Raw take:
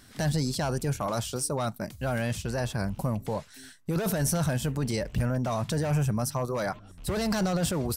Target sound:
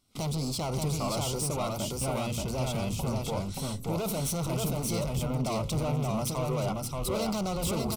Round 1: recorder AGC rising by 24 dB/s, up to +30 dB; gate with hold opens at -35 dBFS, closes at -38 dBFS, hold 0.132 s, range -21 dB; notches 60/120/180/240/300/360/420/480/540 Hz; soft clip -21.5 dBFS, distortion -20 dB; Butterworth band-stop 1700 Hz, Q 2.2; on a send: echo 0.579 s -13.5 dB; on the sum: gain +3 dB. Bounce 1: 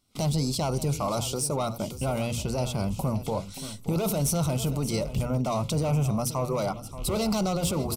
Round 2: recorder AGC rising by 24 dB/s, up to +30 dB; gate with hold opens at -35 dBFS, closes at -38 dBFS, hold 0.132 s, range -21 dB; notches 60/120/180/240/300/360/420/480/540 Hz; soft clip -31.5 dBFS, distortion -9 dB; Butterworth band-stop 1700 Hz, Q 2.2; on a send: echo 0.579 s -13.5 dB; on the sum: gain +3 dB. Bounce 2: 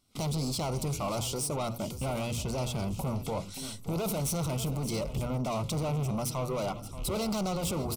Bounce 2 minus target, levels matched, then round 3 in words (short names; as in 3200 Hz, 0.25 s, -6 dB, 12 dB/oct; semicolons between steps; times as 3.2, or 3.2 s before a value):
echo-to-direct -11 dB
recorder AGC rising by 24 dB/s, up to +30 dB; gate with hold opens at -35 dBFS, closes at -38 dBFS, hold 0.132 s, range -21 dB; notches 60/120/180/240/300/360/420/480/540 Hz; soft clip -31.5 dBFS, distortion -9 dB; Butterworth band-stop 1700 Hz, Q 2.2; on a send: echo 0.579 s -2.5 dB; on the sum: gain +3 dB